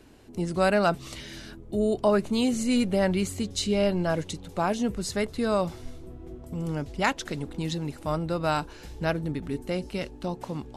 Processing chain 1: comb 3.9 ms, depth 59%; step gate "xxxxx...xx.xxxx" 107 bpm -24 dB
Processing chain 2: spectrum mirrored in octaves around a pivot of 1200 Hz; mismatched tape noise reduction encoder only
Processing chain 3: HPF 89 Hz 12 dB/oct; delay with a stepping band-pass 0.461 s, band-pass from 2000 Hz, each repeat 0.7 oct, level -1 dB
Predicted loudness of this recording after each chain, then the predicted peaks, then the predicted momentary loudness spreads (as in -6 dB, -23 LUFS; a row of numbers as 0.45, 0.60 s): -27.5, -29.0, -28.0 LUFS; -8.0, -12.5, -10.5 dBFS; 18, 13, 10 LU